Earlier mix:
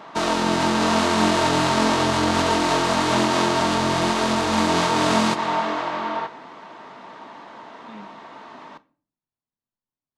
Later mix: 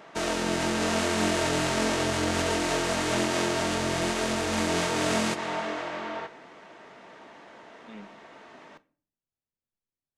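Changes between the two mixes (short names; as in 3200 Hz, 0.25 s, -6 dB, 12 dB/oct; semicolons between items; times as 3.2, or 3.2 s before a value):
speech +4.0 dB; master: add graphic EQ 125/250/1000/4000 Hz -5/-7/-12/-7 dB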